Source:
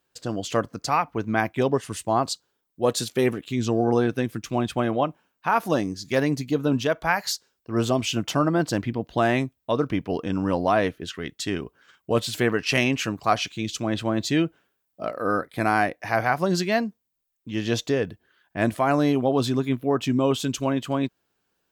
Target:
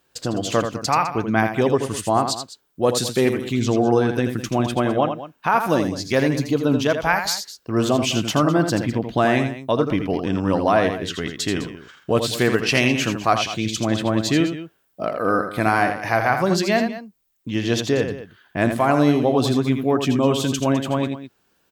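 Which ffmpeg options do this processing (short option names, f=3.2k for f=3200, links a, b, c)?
-filter_complex "[0:a]asplit=2[a][b];[b]acompressor=threshold=-36dB:ratio=6,volume=2dB[c];[a][c]amix=inputs=2:normalize=0,aecho=1:1:82|206:0.422|0.178,volume=1.5dB"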